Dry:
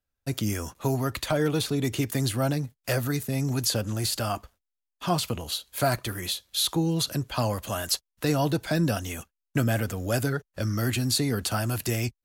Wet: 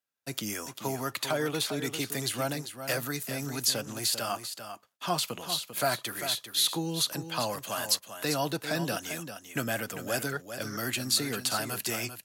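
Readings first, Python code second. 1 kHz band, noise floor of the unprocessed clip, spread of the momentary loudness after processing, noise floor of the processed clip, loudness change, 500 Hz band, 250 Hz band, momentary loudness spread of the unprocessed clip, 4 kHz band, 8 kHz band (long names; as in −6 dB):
−2.0 dB, −85 dBFS, 8 LU, −59 dBFS, −3.0 dB, −4.0 dB, −7.5 dB, 6 LU, +0.5 dB, +0.5 dB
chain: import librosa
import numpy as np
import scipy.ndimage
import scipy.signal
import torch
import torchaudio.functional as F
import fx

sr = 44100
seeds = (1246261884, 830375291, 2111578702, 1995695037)

p1 = scipy.signal.sosfilt(scipy.signal.butter(4, 130.0, 'highpass', fs=sr, output='sos'), x)
p2 = fx.low_shelf(p1, sr, hz=480.0, db=-10.0)
y = p2 + fx.echo_single(p2, sr, ms=395, db=-9.5, dry=0)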